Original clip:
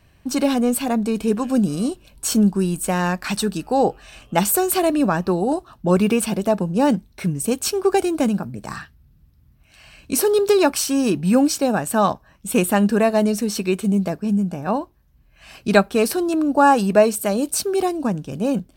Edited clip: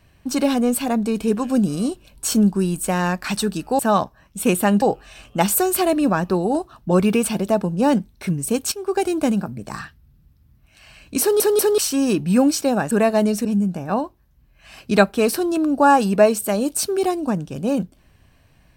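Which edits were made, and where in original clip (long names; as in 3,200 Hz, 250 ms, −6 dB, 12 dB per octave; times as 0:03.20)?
0:07.69–0:08.10: fade in, from −12.5 dB
0:10.18: stutter in place 0.19 s, 3 plays
0:11.88–0:12.91: move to 0:03.79
0:13.45–0:14.22: remove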